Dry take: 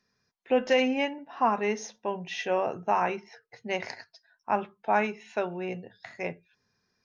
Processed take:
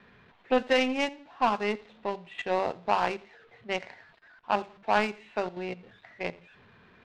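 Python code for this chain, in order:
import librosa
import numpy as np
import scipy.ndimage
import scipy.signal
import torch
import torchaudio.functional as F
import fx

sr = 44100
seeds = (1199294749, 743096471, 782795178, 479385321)

p1 = x + 0.5 * 10.0 ** (-29.5 / 20.0) * np.sign(x)
p2 = scipy.signal.sosfilt(scipy.signal.butter(8, 4000.0, 'lowpass', fs=sr, output='sos'), p1)
p3 = fx.level_steps(p2, sr, step_db=15)
p4 = p2 + (p3 * 10.0 ** (1.0 / 20.0))
p5 = fx.power_curve(p4, sr, exponent=2.0)
p6 = p5 + fx.echo_feedback(p5, sr, ms=85, feedback_pct=33, wet_db=-22.5, dry=0)
y = fx.env_lowpass(p6, sr, base_hz=2500.0, full_db=-21.0)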